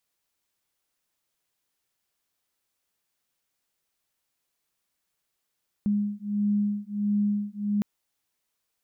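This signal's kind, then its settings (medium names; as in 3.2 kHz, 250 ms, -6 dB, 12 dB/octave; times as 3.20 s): beating tones 205 Hz, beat 1.5 Hz, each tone -26.5 dBFS 1.96 s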